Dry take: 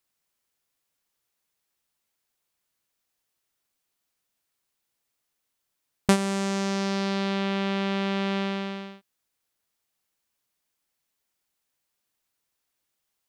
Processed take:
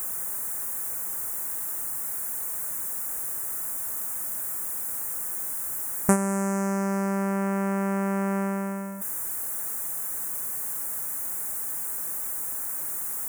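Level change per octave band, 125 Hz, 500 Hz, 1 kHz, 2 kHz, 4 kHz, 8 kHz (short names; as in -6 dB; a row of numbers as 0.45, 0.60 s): +1.5 dB, +0.5 dB, +1.5 dB, -2.0 dB, under -15 dB, +14.5 dB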